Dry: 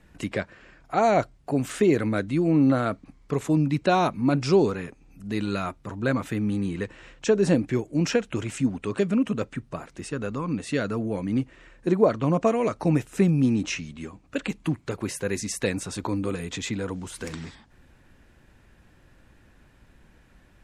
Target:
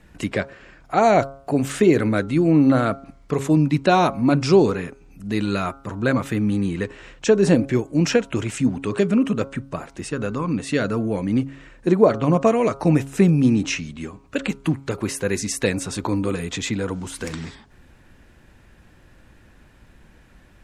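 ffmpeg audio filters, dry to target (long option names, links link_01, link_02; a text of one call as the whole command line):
ffmpeg -i in.wav -af "bandreject=frequency=136.9:width_type=h:width=4,bandreject=frequency=273.8:width_type=h:width=4,bandreject=frequency=410.7:width_type=h:width=4,bandreject=frequency=547.6:width_type=h:width=4,bandreject=frequency=684.5:width_type=h:width=4,bandreject=frequency=821.4:width_type=h:width=4,bandreject=frequency=958.3:width_type=h:width=4,bandreject=frequency=1095.2:width_type=h:width=4,bandreject=frequency=1232.1:width_type=h:width=4,bandreject=frequency=1369:width_type=h:width=4,bandreject=frequency=1505.9:width_type=h:width=4,volume=5dB" out.wav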